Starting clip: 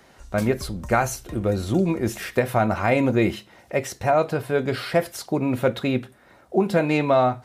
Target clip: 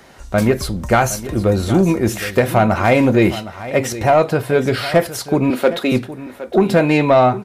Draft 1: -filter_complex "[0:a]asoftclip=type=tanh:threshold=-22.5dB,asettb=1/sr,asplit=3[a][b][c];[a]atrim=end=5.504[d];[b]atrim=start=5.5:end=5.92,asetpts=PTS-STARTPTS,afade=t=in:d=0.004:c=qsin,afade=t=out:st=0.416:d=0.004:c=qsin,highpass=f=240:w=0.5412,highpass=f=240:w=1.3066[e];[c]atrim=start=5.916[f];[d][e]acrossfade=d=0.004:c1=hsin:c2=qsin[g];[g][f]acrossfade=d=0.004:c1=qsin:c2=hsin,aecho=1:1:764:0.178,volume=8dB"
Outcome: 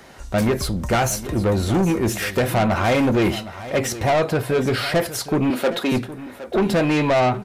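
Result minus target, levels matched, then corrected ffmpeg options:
soft clip: distortion +12 dB
-filter_complex "[0:a]asoftclip=type=tanh:threshold=-11.5dB,asettb=1/sr,asplit=3[a][b][c];[a]atrim=end=5.504[d];[b]atrim=start=5.5:end=5.92,asetpts=PTS-STARTPTS,afade=t=in:d=0.004:c=qsin,afade=t=out:st=0.416:d=0.004:c=qsin,highpass=f=240:w=0.5412,highpass=f=240:w=1.3066[e];[c]atrim=start=5.916[f];[d][e]acrossfade=d=0.004:c1=hsin:c2=qsin[g];[g][f]acrossfade=d=0.004:c1=qsin:c2=hsin,aecho=1:1:764:0.178,volume=8dB"

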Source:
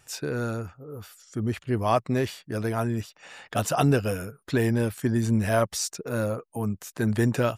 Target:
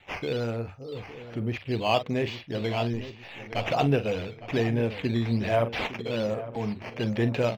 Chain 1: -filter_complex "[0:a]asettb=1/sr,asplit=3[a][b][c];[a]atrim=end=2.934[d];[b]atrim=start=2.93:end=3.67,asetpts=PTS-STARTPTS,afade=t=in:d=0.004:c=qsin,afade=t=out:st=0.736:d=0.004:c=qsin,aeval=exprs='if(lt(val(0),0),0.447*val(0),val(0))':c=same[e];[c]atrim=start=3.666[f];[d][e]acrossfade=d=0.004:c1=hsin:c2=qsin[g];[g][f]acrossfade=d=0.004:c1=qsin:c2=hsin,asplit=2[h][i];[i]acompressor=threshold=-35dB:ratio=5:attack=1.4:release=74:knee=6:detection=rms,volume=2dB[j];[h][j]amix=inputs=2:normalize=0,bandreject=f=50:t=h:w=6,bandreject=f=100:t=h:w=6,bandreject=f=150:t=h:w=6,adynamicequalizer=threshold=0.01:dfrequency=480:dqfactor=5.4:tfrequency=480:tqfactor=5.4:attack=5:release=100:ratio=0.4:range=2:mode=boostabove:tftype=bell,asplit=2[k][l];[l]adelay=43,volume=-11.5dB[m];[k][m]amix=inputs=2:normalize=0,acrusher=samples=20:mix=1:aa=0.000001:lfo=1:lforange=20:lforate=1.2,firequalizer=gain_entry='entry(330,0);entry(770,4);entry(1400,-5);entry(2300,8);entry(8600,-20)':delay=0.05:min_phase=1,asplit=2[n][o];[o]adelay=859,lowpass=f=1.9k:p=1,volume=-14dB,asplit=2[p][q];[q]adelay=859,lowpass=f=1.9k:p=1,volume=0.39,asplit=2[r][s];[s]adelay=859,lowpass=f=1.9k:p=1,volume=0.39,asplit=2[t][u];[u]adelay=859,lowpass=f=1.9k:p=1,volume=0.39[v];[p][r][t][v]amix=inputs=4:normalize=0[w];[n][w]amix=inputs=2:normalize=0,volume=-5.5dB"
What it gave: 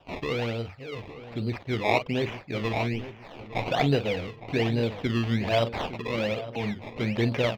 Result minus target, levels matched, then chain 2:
decimation with a swept rate: distortion +6 dB
-filter_complex "[0:a]asettb=1/sr,asplit=3[a][b][c];[a]atrim=end=2.934[d];[b]atrim=start=2.93:end=3.67,asetpts=PTS-STARTPTS,afade=t=in:d=0.004:c=qsin,afade=t=out:st=0.736:d=0.004:c=qsin,aeval=exprs='if(lt(val(0),0),0.447*val(0),val(0))':c=same[e];[c]atrim=start=3.666[f];[d][e]acrossfade=d=0.004:c1=hsin:c2=qsin[g];[g][f]acrossfade=d=0.004:c1=qsin:c2=hsin,asplit=2[h][i];[i]acompressor=threshold=-35dB:ratio=5:attack=1.4:release=74:knee=6:detection=rms,volume=2dB[j];[h][j]amix=inputs=2:normalize=0,bandreject=f=50:t=h:w=6,bandreject=f=100:t=h:w=6,bandreject=f=150:t=h:w=6,adynamicequalizer=threshold=0.01:dfrequency=480:dqfactor=5.4:tfrequency=480:tqfactor=5.4:attack=5:release=100:ratio=0.4:range=2:mode=boostabove:tftype=bell,asplit=2[k][l];[l]adelay=43,volume=-11.5dB[m];[k][m]amix=inputs=2:normalize=0,acrusher=samples=8:mix=1:aa=0.000001:lfo=1:lforange=8:lforate=1.2,firequalizer=gain_entry='entry(330,0);entry(770,4);entry(1400,-5);entry(2300,8);entry(8600,-20)':delay=0.05:min_phase=1,asplit=2[n][o];[o]adelay=859,lowpass=f=1.9k:p=1,volume=-14dB,asplit=2[p][q];[q]adelay=859,lowpass=f=1.9k:p=1,volume=0.39,asplit=2[r][s];[s]adelay=859,lowpass=f=1.9k:p=1,volume=0.39,asplit=2[t][u];[u]adelay=859,lowpass=f=1.9k:p=1,volume=0.39[v];[p][r][t][v]amix=inputs=4:normalize=0[w];[n][w]amix=inputs=2:normalize=0,volume=-5.5dB"

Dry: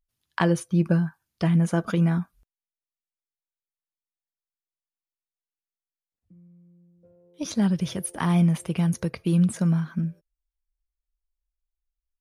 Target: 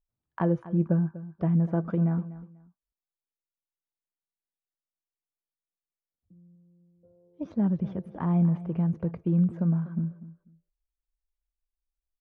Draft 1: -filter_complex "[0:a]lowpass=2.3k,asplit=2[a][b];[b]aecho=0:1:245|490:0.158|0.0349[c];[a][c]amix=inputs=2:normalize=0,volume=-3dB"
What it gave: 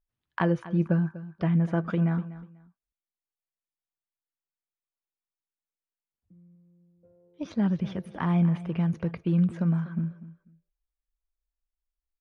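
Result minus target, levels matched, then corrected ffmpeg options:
2000 Hz band +9.5 dB
-filter_complex "[0:a]lowpass=910,asplit=2[a][b];[b]aecho=0:1:245|490:0.158|0.0349[c];[a][c]amix=inputs=2:normalize=0,volume=-3dB"

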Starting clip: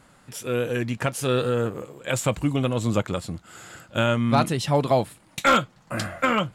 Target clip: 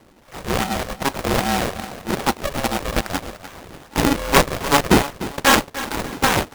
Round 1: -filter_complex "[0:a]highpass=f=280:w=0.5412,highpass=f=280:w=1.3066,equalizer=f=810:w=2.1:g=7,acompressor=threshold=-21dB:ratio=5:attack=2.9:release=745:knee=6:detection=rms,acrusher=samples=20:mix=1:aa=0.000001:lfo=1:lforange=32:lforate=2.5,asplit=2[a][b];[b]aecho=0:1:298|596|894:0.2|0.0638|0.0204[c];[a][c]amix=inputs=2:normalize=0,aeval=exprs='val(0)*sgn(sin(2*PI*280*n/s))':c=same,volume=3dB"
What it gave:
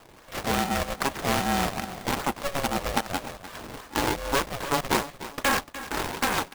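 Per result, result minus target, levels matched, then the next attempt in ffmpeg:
compressor: peak gain reduction +11 dB; decimation with a swept rate: distortion -8 dB
-filter_complex "[0:a]highpass=f=280:w=0.5412,highpass=f=280:w=1.3066,equalizer=f=810:w=2.1:g=7,acrusher=samples=20:mix=1:aa=0.000001:lfo=1:lforange=32:lforate=2.5,asplit=2[a][b];[b]aecho=0:1:298|596|894:0.2|0.0638|0.0204[c];[a][c]amix=inputs=2:normalize=0,aeval=exprs='val(0)*sgn(sin(2*PI*280*n/s))':c=same,volume=3dB"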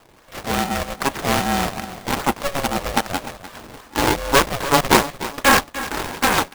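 decimation with a swept rate: distortion -8 dB
-filter_complex "[0:a]highpass=f=280:w=0.5412,highpass=f=280:w=1.3066,equalizer=f=810:w=2.1:g=7,acrusher=samples=43:mix=1:aa=0.000001:lfo=1:lforange=68.8:lforate=2.5,asplit=2[a][b];[b]aecho=0:1:298|596|894:0.2|0.0638|0.0204[c];[a][c]amix=inputs=2:normalize=0,aeval=exprs='val(0)*sgn(sin(2*PI*280*n/s))':c=same,volume=3dB"

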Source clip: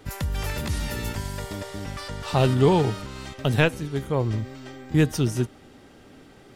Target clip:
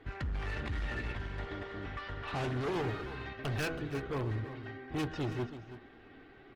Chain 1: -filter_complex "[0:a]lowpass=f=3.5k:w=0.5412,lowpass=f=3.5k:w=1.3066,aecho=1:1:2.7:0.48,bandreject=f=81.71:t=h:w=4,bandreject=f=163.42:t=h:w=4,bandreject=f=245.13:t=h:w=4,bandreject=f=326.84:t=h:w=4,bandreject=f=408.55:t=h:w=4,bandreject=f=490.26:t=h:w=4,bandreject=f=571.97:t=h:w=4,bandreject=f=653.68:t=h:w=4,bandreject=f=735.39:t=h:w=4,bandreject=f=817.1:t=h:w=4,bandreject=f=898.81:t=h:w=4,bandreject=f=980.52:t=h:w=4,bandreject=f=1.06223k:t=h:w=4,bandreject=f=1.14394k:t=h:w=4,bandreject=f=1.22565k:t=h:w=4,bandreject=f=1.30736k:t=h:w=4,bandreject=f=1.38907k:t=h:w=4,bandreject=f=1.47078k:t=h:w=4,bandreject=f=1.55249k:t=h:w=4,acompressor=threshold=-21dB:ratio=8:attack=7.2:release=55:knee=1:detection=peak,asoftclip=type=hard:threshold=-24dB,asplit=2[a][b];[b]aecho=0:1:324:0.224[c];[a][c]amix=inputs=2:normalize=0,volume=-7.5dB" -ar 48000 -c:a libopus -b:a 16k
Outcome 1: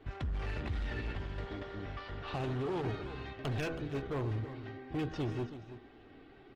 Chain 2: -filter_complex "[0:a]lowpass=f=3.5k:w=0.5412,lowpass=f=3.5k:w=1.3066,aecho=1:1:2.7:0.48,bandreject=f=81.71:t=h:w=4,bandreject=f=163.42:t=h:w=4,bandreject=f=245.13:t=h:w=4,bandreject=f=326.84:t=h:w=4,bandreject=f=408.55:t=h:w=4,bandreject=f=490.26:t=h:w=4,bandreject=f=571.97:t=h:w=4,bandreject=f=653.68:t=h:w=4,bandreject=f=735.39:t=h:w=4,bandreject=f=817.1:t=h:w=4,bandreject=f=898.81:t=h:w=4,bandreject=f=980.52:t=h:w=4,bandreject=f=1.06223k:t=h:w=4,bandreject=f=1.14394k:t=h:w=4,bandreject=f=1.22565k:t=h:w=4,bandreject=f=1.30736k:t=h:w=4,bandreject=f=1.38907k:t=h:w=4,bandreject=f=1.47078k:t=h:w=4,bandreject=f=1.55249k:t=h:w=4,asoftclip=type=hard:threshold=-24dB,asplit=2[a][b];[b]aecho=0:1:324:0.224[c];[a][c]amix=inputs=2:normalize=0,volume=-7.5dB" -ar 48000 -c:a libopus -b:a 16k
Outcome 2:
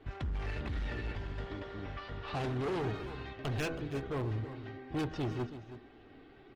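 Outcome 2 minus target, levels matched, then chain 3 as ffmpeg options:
2000 Hz band -3.0 dB
-filter_complex "[0:a]lowpass=f=3.5k:w=0.5412,lowpass=f=3.5k:w=1.3066,equalizer=f=1.7k:t=o:w=1:g=5.5,aecho=1:1:2.7:0.48,bandreject=f=81.71:t=h:w=4,bandreject=f=163.42:t=h:w=4,bandreject=f=245.13:t=h:w=4,bandreject=f=326.84:t=h:w=4,bandreject=f=408.55:t=h:w=4,bandreject=f=490.26:t=h:w=4,bandreject=f=571.97:t=h:w=4,bandreject=f=653.68:t=h:w=4,bandreject=f=735.39:t=h:w=4,bandreject=f=817.1:t=h:w=4,bandreject=f=898.81:t=h:w=4,bandreject=f=980.52:t=h:w=4,bandreject=f=1.06223k:t=h:w=4,bandreject=f=1.14394k:t=h:w=4,bandreject=f=1.22565k:t=h:w=4,bandreject=f=1.30736k:t=h:w=4,bandreject=f=1.38907k:t=h:w=4,bandreject=f=1.47078k:t=h:w=4,bandreject=f=1.55249k:t=h:w=4,asoftclip=type=hard:threshold=-24dB,asplit=2[a][b];[b]aecho=0:1:324:0.224[c];[a][c]amix=inputs=2:normalize=0,volume=-7.5dB" -ar 48000 -c:a libopus -b:a 16k

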